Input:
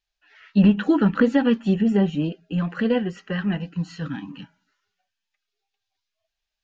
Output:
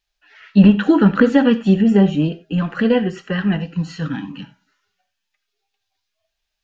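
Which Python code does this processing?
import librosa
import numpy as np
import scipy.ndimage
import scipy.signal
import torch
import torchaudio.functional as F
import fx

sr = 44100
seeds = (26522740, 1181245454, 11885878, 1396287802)

y = fx.rev_gated(x, sr, seeds[0], gate_ms=110, shape='flat', drr_db=12.0)
y = y * 10.0 ** (5.5 / 20.0)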